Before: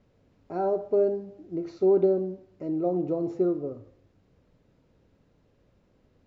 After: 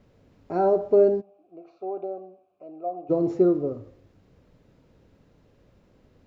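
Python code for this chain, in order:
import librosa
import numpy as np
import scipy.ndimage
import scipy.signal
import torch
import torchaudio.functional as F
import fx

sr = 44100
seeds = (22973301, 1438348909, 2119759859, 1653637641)

y = fx.vowel_filter(x, sr, vowel='a', at=(1.2, 3.09), fade=0.02)
y = y * librosa.db_to_amplitude(5.5)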